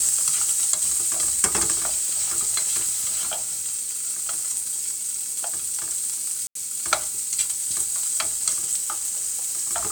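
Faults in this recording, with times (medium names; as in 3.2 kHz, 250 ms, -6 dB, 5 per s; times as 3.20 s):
1.77–2.38 s: clipped -20 dBFS
2.89–4.36 s: clipped -21 dBFS
6.47–6.55 s: dropout 83 ms
8.78–9.61 s: clipped -20.5 dBFS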